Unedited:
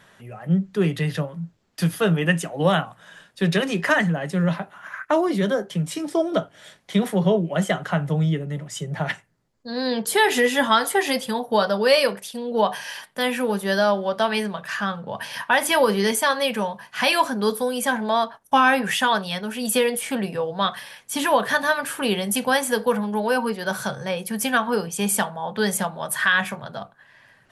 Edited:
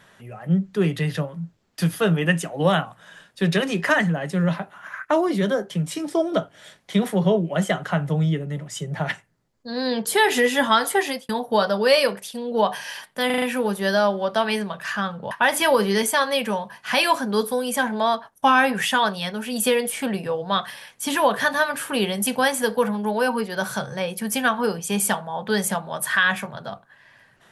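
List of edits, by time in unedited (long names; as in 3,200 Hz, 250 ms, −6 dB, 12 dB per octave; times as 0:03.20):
0:11.00–0:11.29: fade out
0:13.26: stutter 0.04 s, 5 plays
0:15.15–0:15.40: remove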